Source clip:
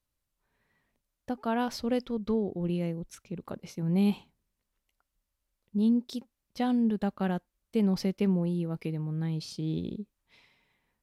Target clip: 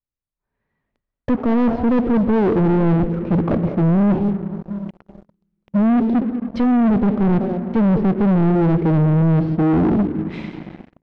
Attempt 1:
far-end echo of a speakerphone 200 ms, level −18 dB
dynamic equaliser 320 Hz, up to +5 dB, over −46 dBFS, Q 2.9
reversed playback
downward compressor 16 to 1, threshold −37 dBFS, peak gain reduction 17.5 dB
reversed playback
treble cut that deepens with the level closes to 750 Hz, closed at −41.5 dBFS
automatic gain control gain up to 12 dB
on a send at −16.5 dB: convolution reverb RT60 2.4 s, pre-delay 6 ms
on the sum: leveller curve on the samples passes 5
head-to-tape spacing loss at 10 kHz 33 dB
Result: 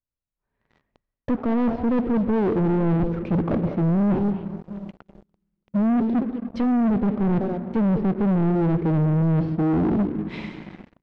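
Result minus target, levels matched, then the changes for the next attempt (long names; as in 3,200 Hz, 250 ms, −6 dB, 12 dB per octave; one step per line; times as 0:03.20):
downward compressor: peak gain reduction +6.5 dB
change: downward compressor 16 to 1, threshold −30 dBFS, peak gain reduction 10.5 dB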